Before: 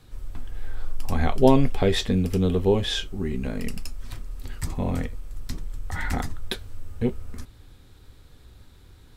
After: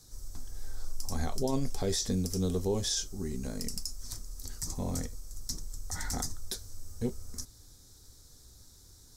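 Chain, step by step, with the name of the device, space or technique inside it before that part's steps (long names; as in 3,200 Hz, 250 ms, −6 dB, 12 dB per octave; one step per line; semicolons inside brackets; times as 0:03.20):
over-bright horn tweeter (high shelf with overshoot 4,000 Hz +13.5 dB, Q 3; brickwall limiter −13 dBFS, peak gain reduction 11 dB)
level −8 dB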